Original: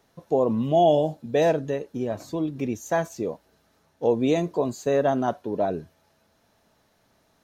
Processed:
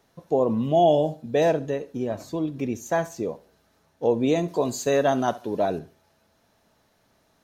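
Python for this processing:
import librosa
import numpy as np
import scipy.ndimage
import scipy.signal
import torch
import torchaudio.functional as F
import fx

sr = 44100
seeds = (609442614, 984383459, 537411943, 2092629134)

y = fx.high_shelf(x, sr, hz=2000.0, db=9.5, at=(4.48, 5.79))
y = fx.echo_feedback(y, sr, ms=69, feedback_pct=31, wet_db=-19)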